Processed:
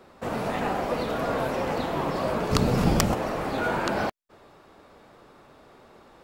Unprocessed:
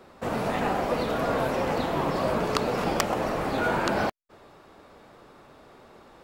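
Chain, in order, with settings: 2.51–3.15 tone controls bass +15 dB, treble +6 dB; gain -1 dB

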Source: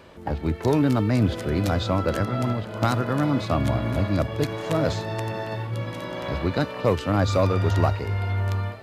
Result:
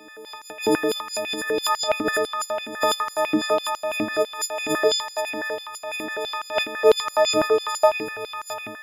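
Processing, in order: frequency quantiser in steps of 6 st; requantised 12-bit, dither triangular; stepped high-pass 12 Hz 280–6000 Hz; gain -4 dB

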